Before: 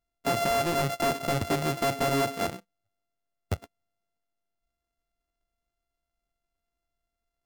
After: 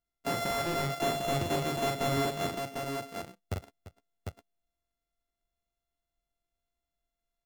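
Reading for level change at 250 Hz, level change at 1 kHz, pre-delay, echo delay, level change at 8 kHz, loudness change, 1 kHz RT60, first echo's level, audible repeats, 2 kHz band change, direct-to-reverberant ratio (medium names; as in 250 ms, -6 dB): -3.0 dB, -3.5 dB, no reverb, 43 ms, -3.5 dB, -4.0 dB, no reverb, -4.0 dB, 3, -3.5 dB, no reverb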